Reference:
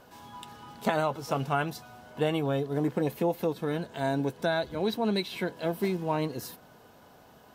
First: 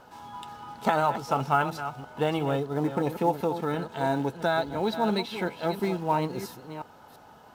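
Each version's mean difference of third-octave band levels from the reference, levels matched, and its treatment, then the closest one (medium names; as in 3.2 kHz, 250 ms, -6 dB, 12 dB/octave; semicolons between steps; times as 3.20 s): 3.0 dB: chunks repeated in reverse 341 ms, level -10.5 dB; treble shelf 12 kHz -9 dB; small resonant body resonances 880/1300 Hz, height 11 dB, ringing for 30 ms; in parallel at -10 dB: short-mantissa float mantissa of 2-bit; on the sum: trim -2 dB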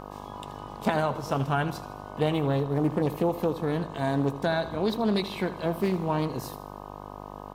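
4.5 dB: bass shelf 250 Hz +6 dB; mains buzz 50 Hz, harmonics 25, -42 dBFS 0 dB/octave; on a send: feedback delay 79 ms, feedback 52%, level -14.5 dB; on the sum: loudspeaker Doppler distortion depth 0.18 ms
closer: first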